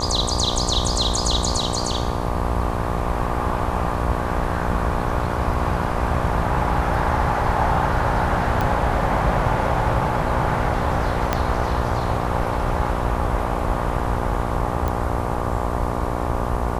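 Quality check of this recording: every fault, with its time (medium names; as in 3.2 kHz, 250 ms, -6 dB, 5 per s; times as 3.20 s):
buzz 60 Hz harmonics 20 -26 dBFS
8.61 s: pop -10 dBFS
11.33 s: pop -5 dBFS
14.88 s: pop -12 dBFS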